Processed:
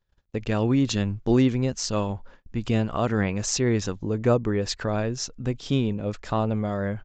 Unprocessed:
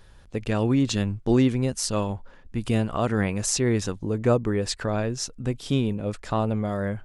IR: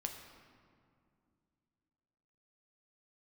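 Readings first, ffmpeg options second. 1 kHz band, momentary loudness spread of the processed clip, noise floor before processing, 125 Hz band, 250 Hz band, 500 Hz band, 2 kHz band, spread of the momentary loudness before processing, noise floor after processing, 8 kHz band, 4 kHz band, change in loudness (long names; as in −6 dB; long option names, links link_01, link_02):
0.0 dB, 9 LU, −50 dBFS, 0.0 dB, 0.0 dB, 0.0 dB, 0.0 dB, 9 LU, −65 dBFS, −2.0 dB, 0.0 dB, 0.0 dB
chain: -af "agate=range=-28dB:threshold=-46dB:ratio=16:detection=peak,aresample=16000,aresample=44100"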